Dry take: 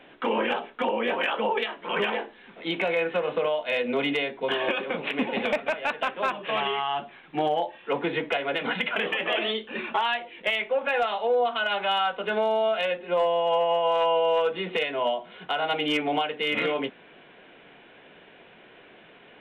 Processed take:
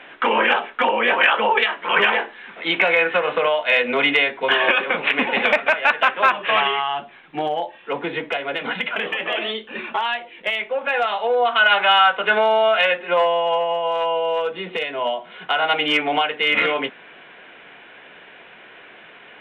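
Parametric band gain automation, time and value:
parametric band 1,700 Hz 2.7 octaves
0:06.53 +13.5 dB
0:07.03 +3.5 dB
0:10.71 +3.5 dB
0:11.67 +14 dB
0:13.10 +14 dB
0:13.75 +2.5 dB
0:14.79 +2.5 dB
0:15.59 +10.5 dB

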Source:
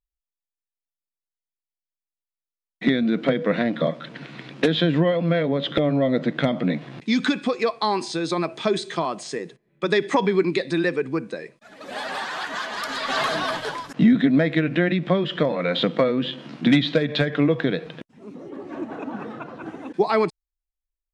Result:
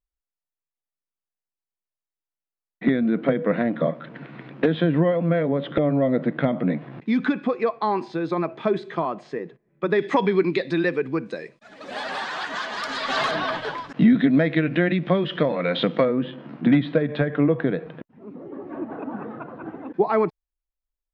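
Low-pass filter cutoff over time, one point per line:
1,800 Hz
from 0:09.99 3,800 Hz
from 0:11.26 6,600 Hz
from 0:13.31 3,600 Hz
from 0:16.05 1,600 Hz

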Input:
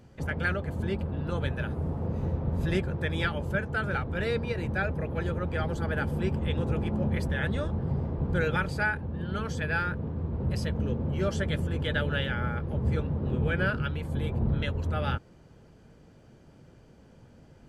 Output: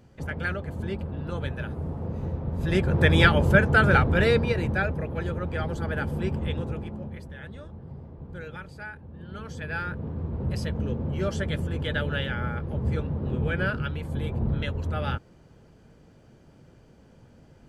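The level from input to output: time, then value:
0:02.57 −1 dB
0:03.02 +11 dB
0:04.00 +11 dB
0:05.09 +0.5 dB
0:06.47 +0.5 dB
0:07.24 −12 dB
0:08.84 −12 dB
0:10.11 +0.5 dB

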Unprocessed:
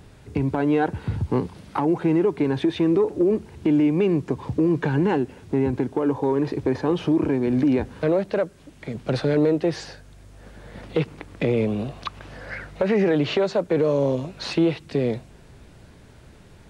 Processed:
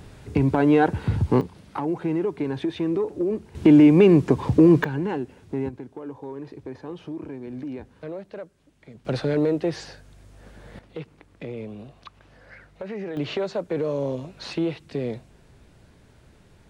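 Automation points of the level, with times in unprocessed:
+3 dB
from 0:01.41 −5 dB
from 0:03.55 +6 dB
from 0:04.84 −6 dB
from 0:05.69 −14 dB
from 0:09.05 −2.5 dB
from 0:10.79 −13 dB
from 0:13.17 −5.5 dB

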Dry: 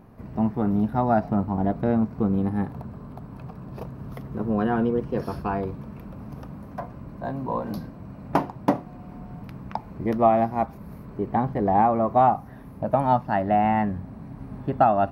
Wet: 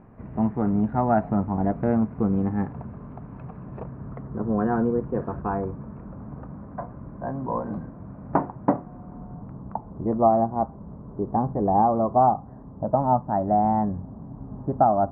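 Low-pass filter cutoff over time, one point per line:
low-pass filter 24 dB per octave
0:03.62 2,300 Hz
0:04.25 1,600 Hz
0:08.73 1,600 Hz
0:09.68 1,100 Hz

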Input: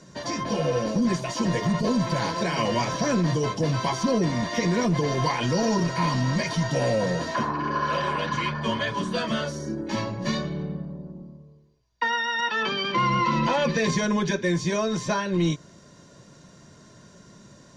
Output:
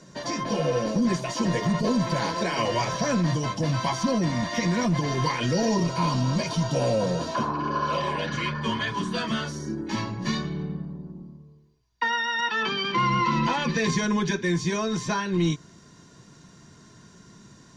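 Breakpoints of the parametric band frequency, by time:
parametric band −13.5 dB 0.27 octaves
0:02.10 87 Hz
0:03.23 420 Hz
0:04.97 420 Hz
0:05.95 1,900 Hz
0:07.87 1,900 Hz
0:08.74 570 Hz

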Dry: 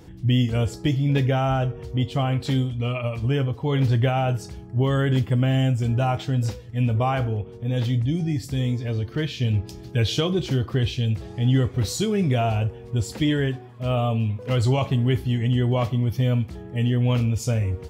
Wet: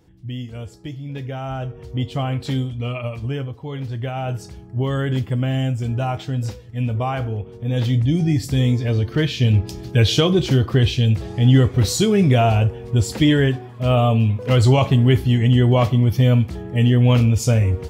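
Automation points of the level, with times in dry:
0:01.13 −10 dB
0:01.97 0 dB
0:03.05 0 dB
0:03.88 −8.5 dB
0:04.38 −0.5 dB
0:07.19 −0.5 dB
0:08.28 +6.5 dB

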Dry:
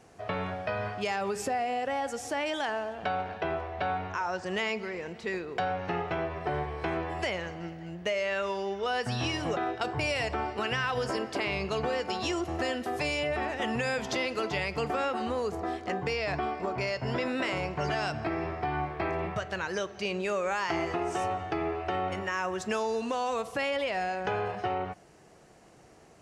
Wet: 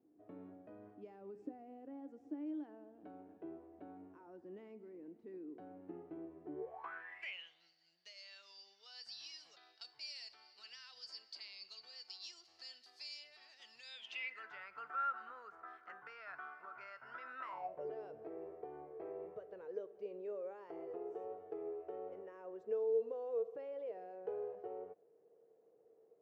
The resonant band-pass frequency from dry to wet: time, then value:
resonant band-pass, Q 12
0:06.54 300 Hz
0:06.91 1,400 Hz
0:07.71 4,600 Hz
0:13.79 4,600 Hz
0:14.56 1,400 Hz
0:17.38 1,400 Hz
0:17.85 460 Hz

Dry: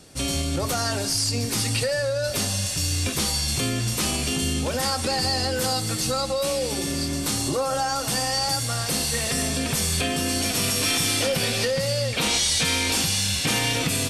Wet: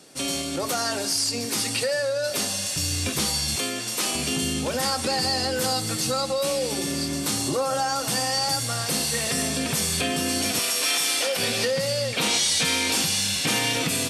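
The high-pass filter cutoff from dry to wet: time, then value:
220 Hz
from 0:02.76 96 Hz
from 0:03.56 340 Hz
from 0:04.15 120 Hz
from 0:10.59 500 Hz
from 0:11.38 150 Hz

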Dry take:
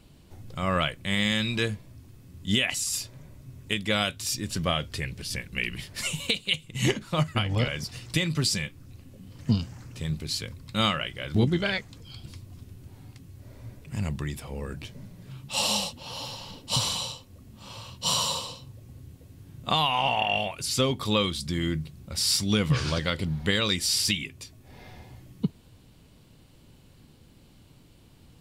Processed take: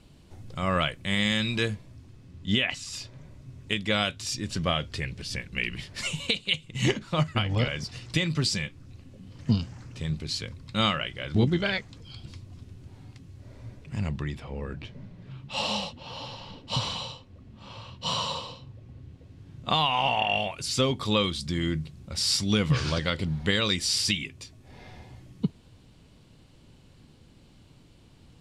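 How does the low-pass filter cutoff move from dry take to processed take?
0:01.67 9,400 Hz
0:02.77 3,600 Hz
0:03.29 6,800 Hz
0:13.71 6,800 Hz
0:14.48 3,500 Hz
0:18.98 3,500 Hz
0:20.08 8,100 Hz

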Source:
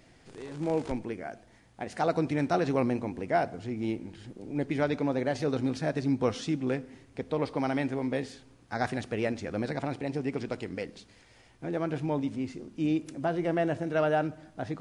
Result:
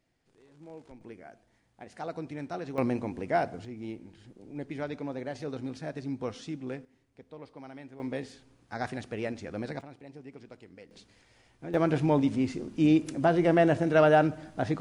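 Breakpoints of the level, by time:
−18 dB
from 0:01.01 −10 dB
from 0:02.78 −0.5 dB
from 0:03.65 −7.5 dB
from 0:06.85 −16.5 dB
from 0:08.00 −4 dB
from 0:09.81 −15 dB
from 0:10.91 −4 dB
from 0:11.74 +5.5 dB

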